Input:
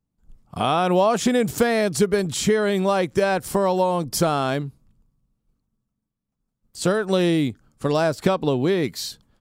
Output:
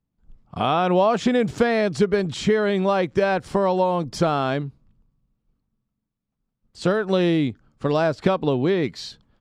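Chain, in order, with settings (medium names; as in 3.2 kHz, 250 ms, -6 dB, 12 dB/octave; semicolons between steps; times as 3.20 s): low-pass 4.1 kHz 12 dB/octave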